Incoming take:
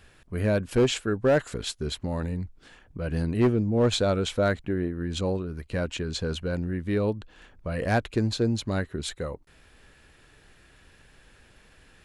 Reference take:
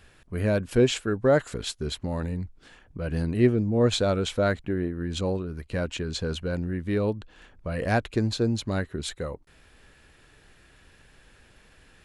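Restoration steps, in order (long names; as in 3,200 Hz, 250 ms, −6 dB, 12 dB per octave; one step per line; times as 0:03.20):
clipped peaks rebuilt −15.5 dBFS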